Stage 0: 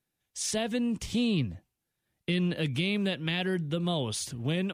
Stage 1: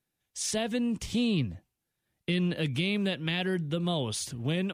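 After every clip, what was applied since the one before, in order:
no processing that can be heard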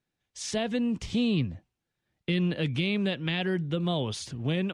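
high-frequency loss of the air 77 metres
level +1.5 dB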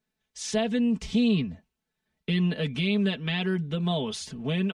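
comb filter 4.6 ms, depth 78%
level −1 dB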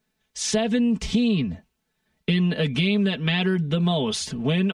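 downward compressor, threshold −26 dBFS, peak gain reduction 7 dB
level +8 dB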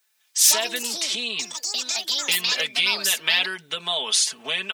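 high-pass filter 1,000 Hz 12 dB per octave
high-shelf EQ 5,100 Hz +11.5 dB
delay with pitch and tempo change per echo 126 ms, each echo +6 semitones, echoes 2
level +3.5 dB

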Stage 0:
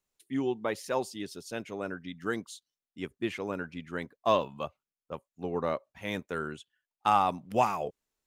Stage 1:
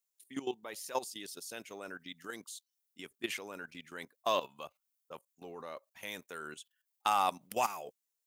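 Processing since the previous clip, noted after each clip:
output level in coarse steps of 14 dB
RIAA equalisation recording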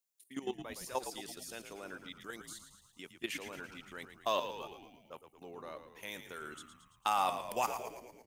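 echo with shifted repeats 112 ms, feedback 58%, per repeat −66 Hz, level −9.5 dB
level −2 dB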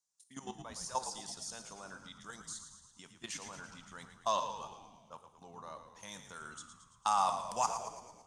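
drawn EQ curve 200 Hz 0 dB, 340 Hz −13 dB, 1,000 Hz +3 dB, 2,400 Hz −11 dB, 6,000 Hz +7 dB, 9,200 Hz +1 dB, 14,000 Hz −28 dB
on a send at −11 dB: convolution reverb, pre-delay 3 ms
on the sum: level +1 dB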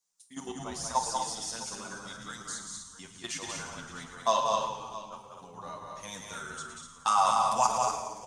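on a send: multi-tap delay 43/189/245/652 ms −13/−4.5/−6.5/−16.5 dB
on the sum: barber-pole flanger 8 ms −0.33 Hz
level +8.5 dB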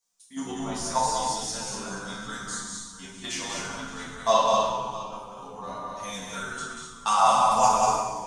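rectangular room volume 170 cubic metres, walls mixed, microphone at 1.6 metres

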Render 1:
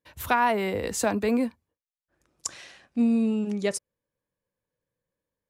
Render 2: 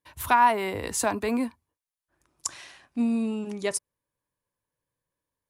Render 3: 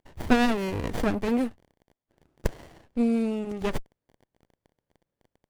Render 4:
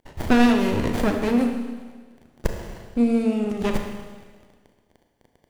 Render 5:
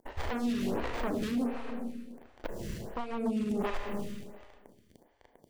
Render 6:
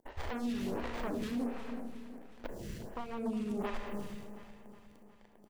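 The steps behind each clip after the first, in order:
thirty-one-band graphic EQ 200 Hz −7 dB, 500 Hz −7 dB, 1,000 Hz +6 dB, 10,000 Hz +7 dB
surface crackle 42 per second −55 dBFS; windowed peak hold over 33 samples; level +2.5 dB
in parallel at +2 dB: downward compressor, threshold −32 dBFS, peak gain reduction 17 dB; on the sum: four-comb reverb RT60 1.5 s, combs from 26 ms, DRR 4 dB
downward compressor 10 to 1, threshold −27 dBFS, peak gain reduction 16.5 dB; wave folding −27 dBFS; phaser with staggered stages 1.4 Hz; level +3.5 dB
repeating echo 363 ms, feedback 59%, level −14 dB; level −4.5 dB

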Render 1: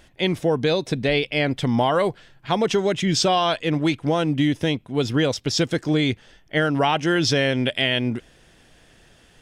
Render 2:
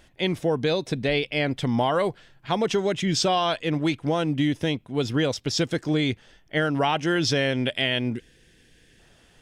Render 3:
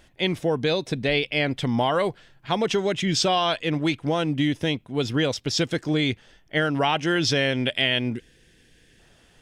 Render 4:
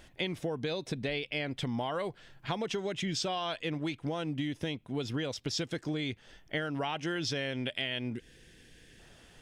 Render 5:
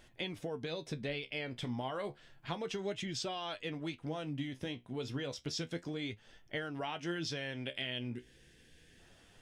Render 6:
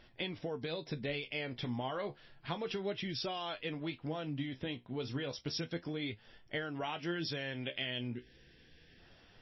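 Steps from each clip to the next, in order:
gain on a spectral selection 0:08.15–0:08.99, 520–1,500 Hz −11 dB; level −3 dB
dynamic equaliser 2,800 Hz, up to +3 dB, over −36 dBFS, Q 0.84
downward compressor 5 to 1, threshold −32 dBFS, peak gain reduction 13.5 dB
flanger 0.31 Hz, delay 8 ms, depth 8.9 ms, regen +54%; level −1 dB
level +1 dB; MP3 24 kbit/s 16,000 Hz

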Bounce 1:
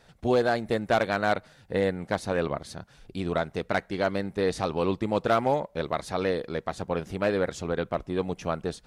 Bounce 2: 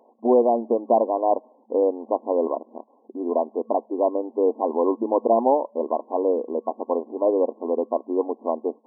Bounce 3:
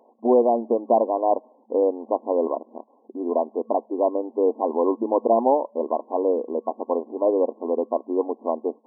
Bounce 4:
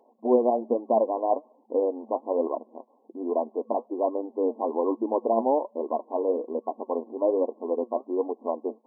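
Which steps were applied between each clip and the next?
brick-wall band-pass 220–1,100 Hz; level +6 dB
no processing that can be heard
flanger 1.2 Hz, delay 2.2 ms, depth 7.1 ms, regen +57%

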